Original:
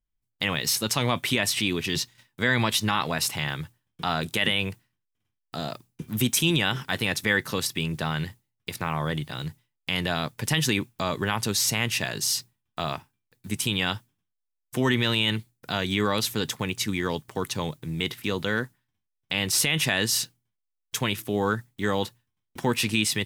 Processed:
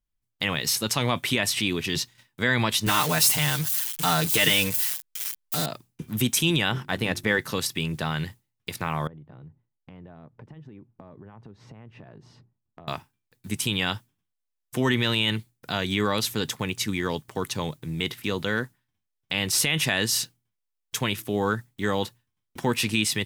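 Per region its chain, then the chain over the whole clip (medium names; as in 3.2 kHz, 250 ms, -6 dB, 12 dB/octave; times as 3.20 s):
2.86–5.66 s: zero-crossing glitches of -20.5 dBFS + comb 6.6 ms, depth 99%
6.69–7.39 s: companding laws mixed up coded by A + tilt shelf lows +4 dB, about 1.5 kHz + hum notches 50/100/150/200/250/300/350 Hz
9.07–12.88 s: Bessel low-pass 600 Hz + compression 8:1, threshold -42 dBFS
whole clip: none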